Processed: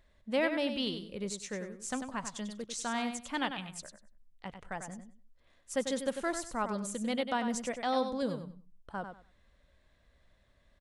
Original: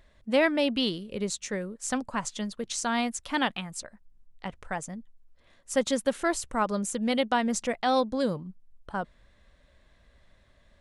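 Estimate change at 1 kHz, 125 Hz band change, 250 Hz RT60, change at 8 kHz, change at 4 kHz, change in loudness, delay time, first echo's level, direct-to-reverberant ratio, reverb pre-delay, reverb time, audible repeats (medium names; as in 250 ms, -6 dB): -6.5 dB, -6.0 dB, no reverb, -6.5 dB, -6.5 dB, -6.5 dB, 96 ms, -8.0 dB, no reverb, no reverb, no reverb, 2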